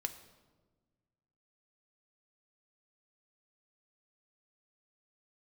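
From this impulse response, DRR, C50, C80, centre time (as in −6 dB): 7.5 dB, 12.0 dB, 14.0 dB, 10 ms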